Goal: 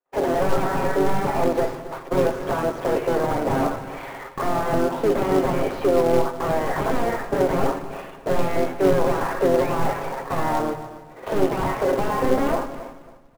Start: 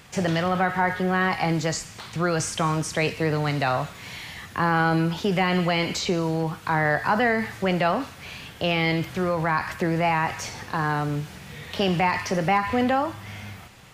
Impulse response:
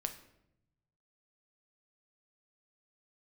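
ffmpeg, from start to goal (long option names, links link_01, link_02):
-filter_complex "[0:a]aeval=exprs='val(0)+0.5*0.0158*sgn(val(0))':channel_layout=same,highpass=frequency=430:width=0.5412,highpass=frequency=430:width=1.3066,asetrate=45938,aresample=44100,agate=range=-55dB:threshold=-35dB:ratio=16:detection=peak,aeval=exprs='0.0501*(abs(mod(val(0)/0.0501+3,4)-2)-1)':channel_layout=same,lowpass=1300,asplit=2[link_01][link_02];[1:a]atrim=start_sample=2205,asetrate=26901,aresample=44100[link_03];[link_02][link_03]afir=irnorm=-1:irlink=0,volume=2.5dB[link_04];[link_01][link_04]amix=inputs=2:normalize=0,asplit=2[link_05][link_06];[link_06]asetrate=33038,aresample=44100,atempo=1.33484,volume=-7dB[link_07];[link_05][link_07]amix=inputs=2:normalize=0,aecho=1:1:7.4:0.34,acrusher=bits=2:mode=log:mix=0:aa=0.000001,tiltshelf=frequency=900:gain=6.5,aecho=1:1:273|546|819:0.178|0.048|0.013"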